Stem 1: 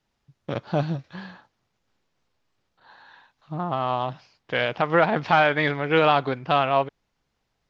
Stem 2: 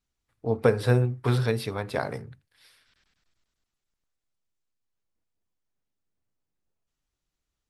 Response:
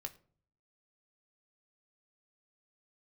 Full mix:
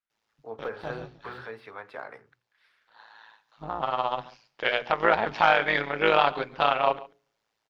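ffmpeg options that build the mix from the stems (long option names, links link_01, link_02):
-filter_complex "[0:a]highpass=frequency=530:poles=1,tremolo=f=110:d=0.824,adelay=100,volume=1dB,asplit=3[link_01][link_02][link_03];[link_02]volume=-6.5dB[link_04];[link_03]volume=-18dB[link_05];[1:a]equalizer=frequency=1500:width=0.65:gain=12,deesser=0.95,acrossover=split=300 4400:gain=0.2 1 0.224[link_06][link_07][link_08];[link_06][link_07][link_08]amix=inputs=3:normalize=0,volume=-13.5dB,asplit=2[link_09][link_10];[link_10]apad=whole_len=343541[link_11];[link_01][link_11]sidechaincompress=threshold=-44dB:ratio=8:attack=37:release=1170[link_12];[2:a]atrim=start_sample=2205[link_13];[link_04][link_13]afir=irnorm=-1:irlink=0[link_14];[link_05]aecho=0:1:140:1[link_15];[link_12][link_09][link_14][link_15]amix=inputs=4:normalize=0,bandreject=frequency=60:width_type=h:width=6,bandreject=frequency=120:width_type=h:width=6,bandreject=frequency=180:width_type=h:width=6,bandreject=frequency=240:width_type=h:width=6,bandreject=frequency=300:width_type=h:width=6,bandreject=frequency=360:width_type=h:width=6,bandreject=frequency=420:width_type=h:width=6"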